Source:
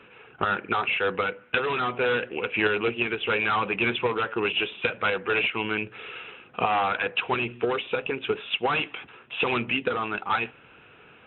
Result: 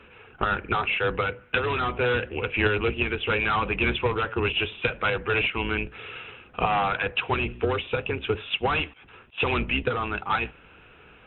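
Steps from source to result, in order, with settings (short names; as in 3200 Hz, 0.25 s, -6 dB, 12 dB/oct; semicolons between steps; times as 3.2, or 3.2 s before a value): octaver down 2 oct, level +1 dB; 8.91–9.38 auto swell 0.212 s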